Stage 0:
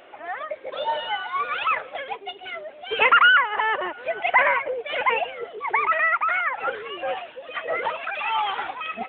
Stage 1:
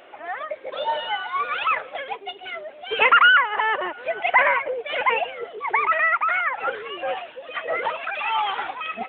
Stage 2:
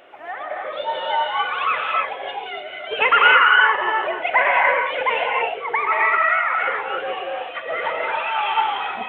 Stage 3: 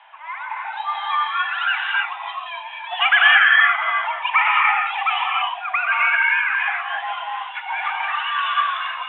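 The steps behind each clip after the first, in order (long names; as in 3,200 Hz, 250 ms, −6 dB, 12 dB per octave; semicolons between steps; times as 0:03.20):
low-shelf EQ 160 Hz −3.5 dB; level +1 dB
convolution reverb, pre-delay 3 ms, DRR −1.5 dB; level −1 dB
single-sideband voice off tune +280 Hz 400–3,200 Hz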